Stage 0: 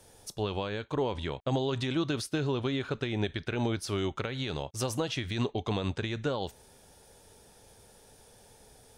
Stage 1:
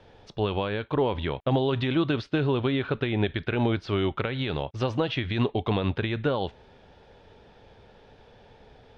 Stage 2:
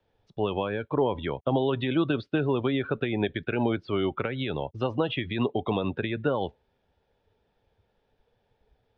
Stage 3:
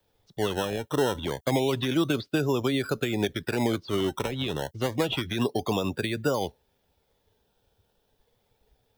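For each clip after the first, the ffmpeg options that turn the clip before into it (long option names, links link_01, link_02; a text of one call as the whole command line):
ffmpeg -i in.wav -af "lowpass=frequency=3500:width=0.5412,lowpass=frequency=3500:width=1.3066,volume=5.5dB" out.wav
ffmpeg -i in.wav -filter_complex "[0:a]afftdn=noise_reduction=19:noise_floor=-35,acrossover=split=140|780|1200[link_01][link_02][link_03][link_04];[link_01]acompressor=threshold=-42dB:ratio=6[link_05];[link_05][link_02][link_03][link_04]amix=inputs=4:normalize=0" out.wav
ffmpeg -i in.wav -filter_complex "[0:a]aemphasis=mode=production:type=75kf,acrossover=split=470|2200[link_01][link_02][link_03];[link_02]acrusher=samples=13:mix=1:aa=0.000001:lfo=1:lforange=13:lforate=0.29[link_04];[link_01][link_04][link_03]amix=inputs=3:normalize=0" out.wav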